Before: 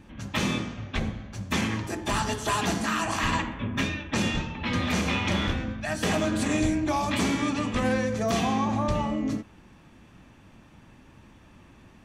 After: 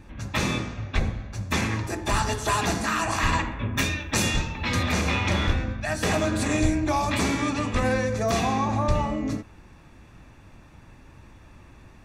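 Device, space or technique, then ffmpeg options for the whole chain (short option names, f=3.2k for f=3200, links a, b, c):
low shelf boost with a cut just above: -filter_complex "[0:a]asettb=1/sr,asplit=3[a][b][c];[a]atrim=end=3.774[d];[b]atrim=start=3.77:end=4.83,asetpts=PTS-STARTPTS,afade=t=in:d=0.004:c=qsin,afade=t=out:st=1.056:d=0.004:c=qsin,aemphasis=mode=production:type=50fm[e];[c]atrim=start=4.826[f];[d][e]acrossfade=d=0.004:c1=hsin:c2=qsin[g];[g][f]acrossfade=d=0.004:c1=qsin:c2=hsin,lowshelf=f=96:g=6.5,equalizer=f=210:t=o:w=0.92:g=-5.5,bandreject=f=3.1k:w=7.7,volume=2.5dB"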